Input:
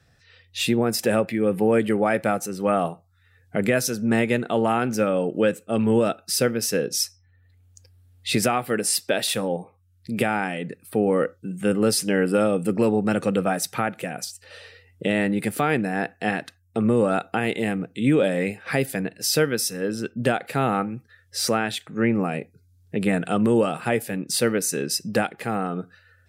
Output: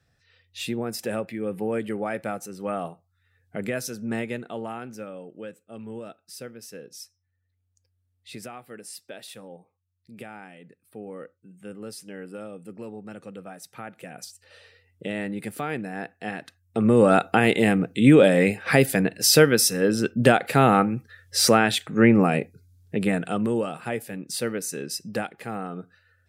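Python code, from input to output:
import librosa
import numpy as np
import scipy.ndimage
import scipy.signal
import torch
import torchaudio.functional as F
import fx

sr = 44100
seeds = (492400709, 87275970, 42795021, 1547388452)

y = fx.gain(x, sr, db=fx.line((4.16, -8.0), (5.28, -18.0), (13.57, -18.0), (14.21, -8.0), (16.33, -8.0), (17.11, 5.0), (22.4, 5.0), (23.63, -6.5)))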